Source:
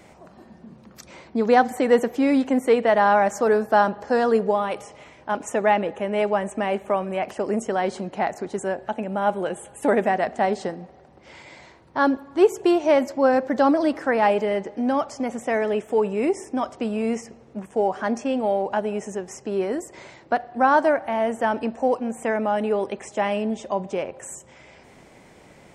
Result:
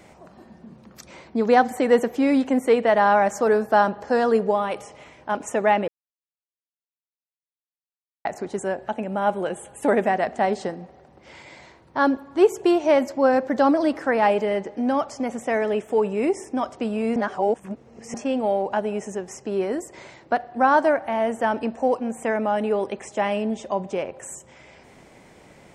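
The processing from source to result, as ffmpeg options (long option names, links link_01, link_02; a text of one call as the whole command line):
ffmpeg -i in.wav -filter_complex "[0:a]asplit=5[link_01][link_02][link_03][link_04][link_05];[link_01]atrim=end=5.88,asetpts=PTS-STARTPTS,afade=type=out:start_time=5.876:duration=0.004:curve=hsin[link_06];[link_02]atrim=start=5.88:end=8.25,asetpts=PTS-STARTPTS,volume=0[link_07];[link_03]atrim=start=8.25:end=17.162,asetpts=PTS-STARTPTS,afade=type=in:duration=0.004:curve=hsin[link_08];[link_04]atrim=start=17.158:end=18.142,asetpts=PTS-STARTPTS,areverse[link_09];[link_05]atrim=start=18.138[link_10];[link_06][link_07][link_08]concat=n=3:v=0:a=1[link_11];[link_11][link_09]acrossfade=duration=0.004:curve1=hsin:curve2=hsin[link_12];[link_12][link_10]acrossfade=duration=0.004:curve1=hsin:curve2=hsin" out.wav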